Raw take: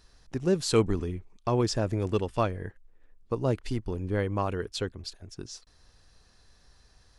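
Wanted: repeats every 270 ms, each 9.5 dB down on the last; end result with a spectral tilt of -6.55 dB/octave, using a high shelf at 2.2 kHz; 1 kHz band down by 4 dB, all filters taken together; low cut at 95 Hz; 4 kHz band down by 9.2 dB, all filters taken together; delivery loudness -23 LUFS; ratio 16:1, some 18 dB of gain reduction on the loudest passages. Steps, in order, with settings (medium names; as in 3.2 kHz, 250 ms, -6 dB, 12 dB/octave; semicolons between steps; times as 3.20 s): high-pass 95 Hz; peaking EQ 1 kHz -3.5 dB; treble shelf 2.2 kHz -6.5 dB; peaking EQ 4 kHz -5 dB; compression 16:1, threshold -36 dBFS; feedback delay 270 ms, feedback 33%, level -9.5 dB; trim +20 dB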